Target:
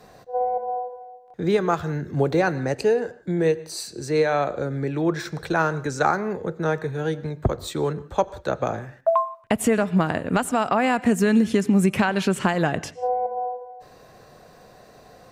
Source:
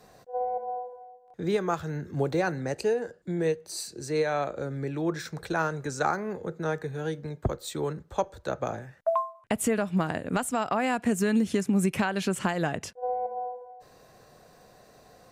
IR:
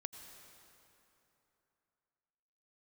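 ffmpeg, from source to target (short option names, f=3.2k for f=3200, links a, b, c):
-filter_complex "[0:a]asplit=2[a][b];[1:a]atrim=start_sample=2205,afade=t=out:st=0.24:d=0.01,atrim=end_sample=11025,lowpass=5.8k[c];[b][c]afir=irnorm=-1:irlink=0,volume=-1.5dB[d];[a][d]amix=inputs=2:normalize=0,volume=2.5dB"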